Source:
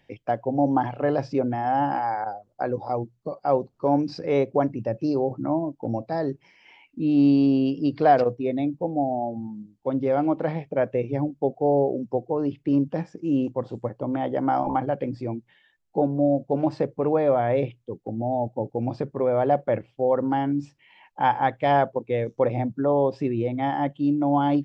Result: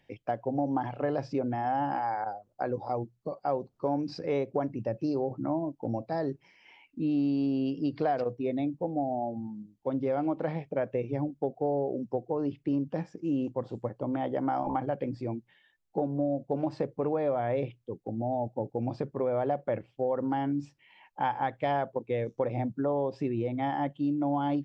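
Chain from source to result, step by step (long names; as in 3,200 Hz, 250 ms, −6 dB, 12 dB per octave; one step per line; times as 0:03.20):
downward compressor 5 to 1, threshold −21 dBFS, peak gain reduction 8.5 dB
level −4 dB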